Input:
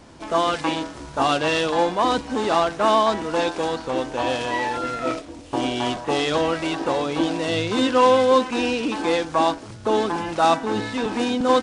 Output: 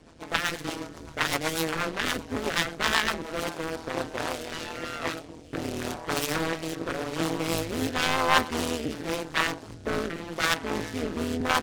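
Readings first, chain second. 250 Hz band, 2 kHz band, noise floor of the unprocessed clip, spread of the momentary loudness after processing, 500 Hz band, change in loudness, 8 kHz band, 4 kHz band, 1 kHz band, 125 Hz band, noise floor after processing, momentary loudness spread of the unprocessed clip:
-8.0 dB, 0.0 dB, -39 dBFS, 10 LU, -11.0 dB, -7.0 dB, +1.5 dB, -3.0 dB, -9.5 dB, -2.5 dB, -45 dBFS, 8 LU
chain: self-modulated delay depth 0.95 ms; rotary cabinet horn 8 Hz, later 0.9 Hz, at 2.90 s; AM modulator 160 Hz, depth 85%

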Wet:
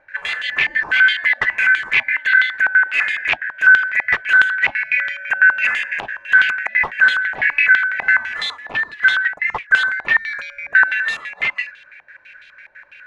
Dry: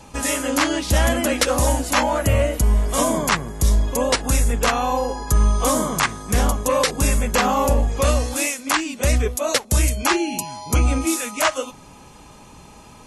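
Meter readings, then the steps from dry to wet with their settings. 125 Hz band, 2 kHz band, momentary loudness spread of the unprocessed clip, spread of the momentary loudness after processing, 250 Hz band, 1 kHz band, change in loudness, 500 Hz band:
under -25 dB, +16.0 dB, 4 LU, 10 LU, under -20 dB, -7.0 dB, +4.5 dB, -18.0 dB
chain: four frequency bands reordered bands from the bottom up 4123; step-sequenced low-pass 12 Hz 810–3300 Hz; trim -4 dB

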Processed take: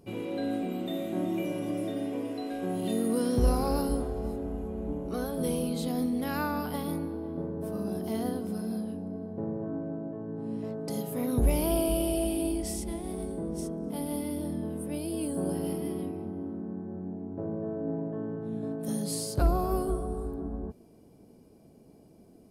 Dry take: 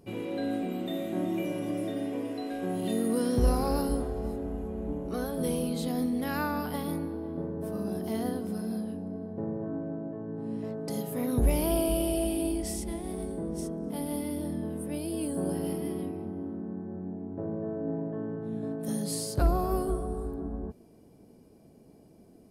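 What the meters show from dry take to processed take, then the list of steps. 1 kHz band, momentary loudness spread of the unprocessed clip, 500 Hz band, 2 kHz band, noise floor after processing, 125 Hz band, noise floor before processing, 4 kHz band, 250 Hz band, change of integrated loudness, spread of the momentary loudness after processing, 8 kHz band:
0.0 dB, 9 LU, 0.0 dB, -1.0 dB, -56 dBFS, 0.0 dB, -56 dBFS, 0.0 dB, 0.0 dB, 0.0 dB, 9 LU, 0.0 dB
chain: peaking EQ 1.8 kHz -3.5 dB 0.28 oct

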